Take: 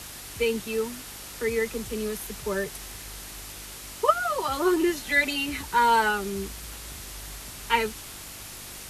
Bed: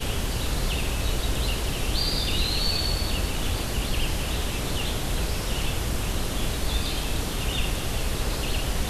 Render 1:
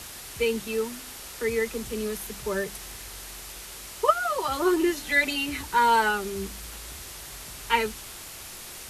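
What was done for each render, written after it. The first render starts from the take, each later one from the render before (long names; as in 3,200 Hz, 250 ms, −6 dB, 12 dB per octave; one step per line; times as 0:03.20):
hum removal 50 Hz, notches 6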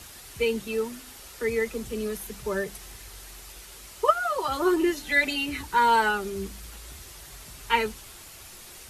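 broadband denoise 6 dB, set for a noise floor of −42 dBFS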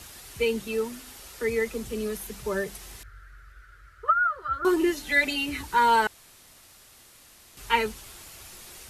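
0:03.03–0:04.65: drawn EQ curve 110 Hz 0 dB, 200 Hz −19 dB, 360 Hz −16 dB, 600 Hz −15 dB, 920 Hz −27 dB, 1,400 Hz +8 dB, 2,600 Hz −18 dB, 4,300 Hz −21 dB, 8,000 Hz −27 dB
0:06.07–0:07.57: fill with room tone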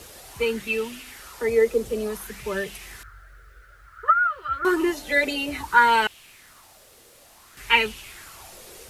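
bit reduction 11 bits
auto-filter bell 0.57 Hz 460–2,900 Hz +13 dB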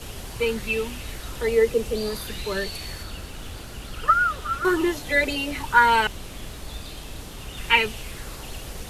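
mix in bed −10 dB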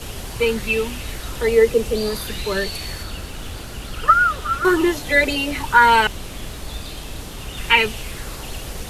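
level +5 dB
brickwall limiter −2 dBFS, peak gain reduction 2.5 dB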